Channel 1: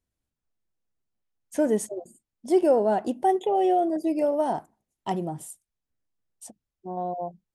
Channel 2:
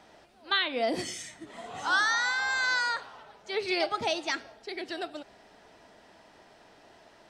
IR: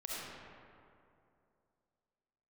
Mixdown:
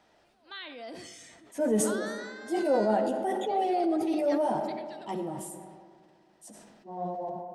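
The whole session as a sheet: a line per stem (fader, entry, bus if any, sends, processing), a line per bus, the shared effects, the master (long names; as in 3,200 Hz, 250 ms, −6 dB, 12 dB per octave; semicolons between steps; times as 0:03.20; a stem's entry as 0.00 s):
−2.0 dB, 0.00 s, send −10 dB, high-pass filter 100 Hz; string-ensemble chorus
−9.0 dB, 0.00 s, send −15.5 dB, downward compressor 1.5 to 1, threshold −40 dBFS, peak gain reduction 7 dB; automatic ducking −6 dB, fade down 0.20 s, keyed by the first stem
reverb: on, RT60 2.6 s, pre-delay 25 ms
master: transient designer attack −4 dB, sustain +1 dB; level that may fall only so fast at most 33 dB per second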